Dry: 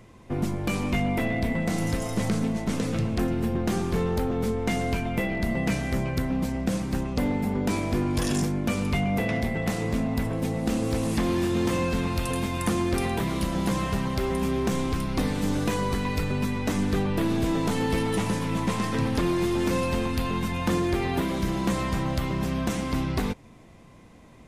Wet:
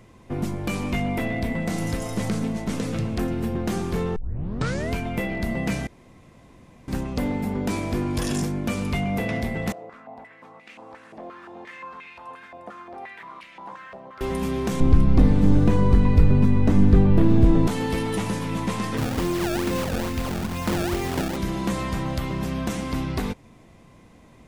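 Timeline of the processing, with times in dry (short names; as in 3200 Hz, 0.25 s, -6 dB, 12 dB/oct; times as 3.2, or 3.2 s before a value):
4.16 tape start 0.76 s
5.87–6.88 room tone
9.72–14.21 stepped band-pass 5.7 Hz 640–2300 Hz
14.8–17.67 tilt -3.5 dB/oct
18.97–21.37 decimation with a swept rate 25×, swing 160% 2.3 Hz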